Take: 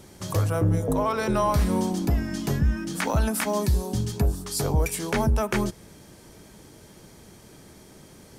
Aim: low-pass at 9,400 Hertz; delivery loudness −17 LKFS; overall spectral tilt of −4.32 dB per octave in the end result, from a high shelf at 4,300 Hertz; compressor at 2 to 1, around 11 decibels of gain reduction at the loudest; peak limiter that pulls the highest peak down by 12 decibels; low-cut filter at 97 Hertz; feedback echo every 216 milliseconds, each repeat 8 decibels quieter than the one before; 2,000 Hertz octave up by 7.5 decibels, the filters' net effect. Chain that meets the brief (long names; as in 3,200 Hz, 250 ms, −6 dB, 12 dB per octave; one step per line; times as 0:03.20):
high-pass filter 97 Hz
low-pass filter 9,400 Hz
parametric band 2,000 Hz +8 dB
high-shelf EQ 4,300 Hz +7.5 dB
downward compressor 2 to 1, threshold −39 dBFS
brickwall limiter −27.5 dBFS
repeating echo 216 ms, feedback 40%, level −8 dB
level +20.5 dB